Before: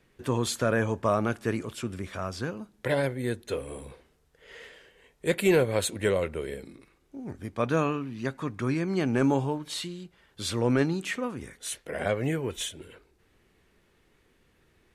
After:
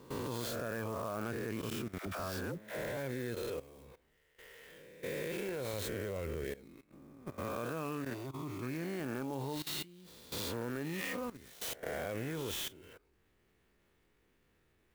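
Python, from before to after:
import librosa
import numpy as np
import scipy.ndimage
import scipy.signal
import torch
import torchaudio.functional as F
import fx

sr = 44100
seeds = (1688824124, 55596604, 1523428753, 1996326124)

y = fx.spec_swells(x, sr, rise_s=1.07)
y = fx.low_shelf(y, sr, hz=170.0, db=10.5, at=(5.73, 6.45))
y = fx.level_steps(y, sr, step_db=17)
y = fx.dispersion(y, sr, late='lows', ms=81.0, hz=460.0, at=(1.98, 2.97))
y = fx.fixed_phaser(y, sr, hz=330.0, stages=8, at=(8.13, 8.61), fade=0.02)
y = fx.clock_jitter(y, sr, seeds[0], jitter_ms=0.03)
y = y * librosa.db_to_amplitude(-4.5)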